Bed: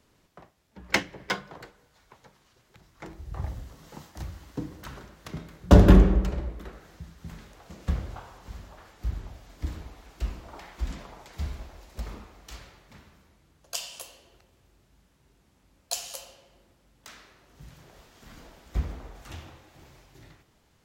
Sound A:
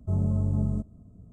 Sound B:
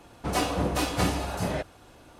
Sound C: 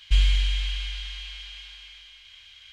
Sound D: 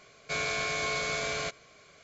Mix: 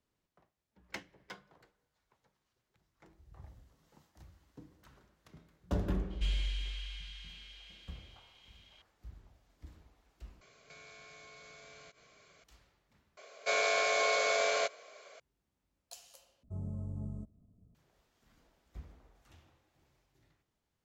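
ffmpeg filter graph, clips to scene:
-filter_complex "[4:a]asplit=2[s0][s1];[0:a]volume=0.106[s2];[s0]acompressor=threshold=0.00447:ratio=6:attack=3.2:release=140:knee=1:detection=peak[s3];[s1]highpass=f=550:t=q:w=2.5[s4];[s2]asplit=4[s5][s6][s7][s8];[s5]atrim=end=10.414[s9];[s3]atrim=end=2.03,asetpts=PTS-STARTPTS,volume=0.501[s10];[s6]atrim=start=12.436:end=13.174[s11];[s4]atrim=end=2.03,asetpts=PTS-STARTPTS,volume=0.944[s12];[s7]atrim=start=15.196:end=16.434[s13];[1:a]atrim=end=1.32,asetpts=PTS-STARTPTS,volume=0.188[s14];[s8]atrim=start=17.746[s15];[3:a]atrim=end=2.72,asetpts=PTS-STARTPTS,volume=0.224,afade=t=in:d=0.004:c=hsin,afade=t=out:st=2.716:d=0.004:c=hsin,adelay=269010S[s16];[s9][s10]acrossfade=d=0.004:c1=hsin:c2=hsin[s17];[s17][s11]acrossfade=d=0.004:c1=hsin:c2=hsin[s18];[s18][s12]acrossfade=d=0.004:c1=hsin:c2=hsin[s19];[s19][s13]acrossfade=d=0.004:c1=hsin:c2=hsin[s20];[s20][s14]acrossfade=d=0.004:c1=hsin:c2=hsin[s21];[s21][s15]acrossfade=d=0.004:c1=hsin:c2=hsin[s22];[s22][s16]amix=inputs=2:normalize=0"

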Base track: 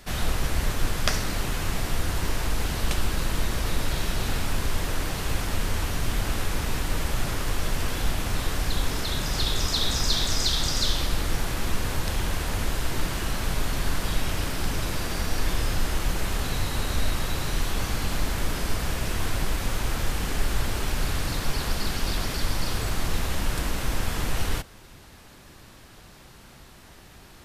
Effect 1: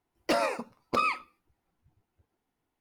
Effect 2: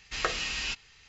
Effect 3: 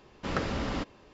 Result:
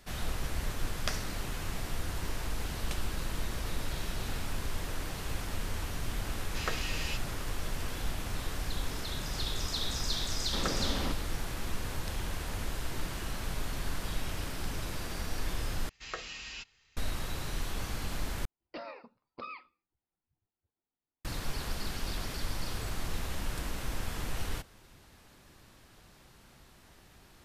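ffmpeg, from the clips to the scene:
-filter_complex "[2:a]asplit=2[s0][s1];[0:a]volume=0.355[s2];[1:a]aresample=11025,aresample=44100[s3];[s2]asplit=3[s4][s5][s6];[s4]atrim=end=15.894[s7];[s1]atrim=end=1.08,asetpts=PTS-STARTPTS,volume=0.299[s8];[s5]atrim=start=16.966:end=18.454[s9];[s3]atrim=end=2.8,asetpts=PTS-STARTPTS,volume=0.15[s10];[s6]atrim=start=21.246[s11];[s0]atrim=end=1.08,asetpts=PTS-STARTPTS,volume=0.501,afade=t=in:d=0.004:c=hsin,afade=t=out:st=1.076:d=0.004:c=hsin,adelay=6430[s12];[3:a]atrim=end=1.13,asetpts=PTS-STARTPTS,volume=0.668,afade=t=in:d=0.004:c=hsin,afade=t=out:st=1.126:d=0.004:c=hsin,adelay=10290[s13];[s7][s8]acrossfade=d=0.004:c1=hsin:c2=hsin[s14];[s14][s9]acrossfade=d=0.004:c1=hsin:c2=hsin[s15];[s15][s10]acrossfade=d=0.004:c1=hsin:c2=hsin[s16];[s16][s11]acrossfade=d=0.004:c1=hsin:c2=hsin[s17];[s17][s12][s13]amix=inputs=3:normalize=0"

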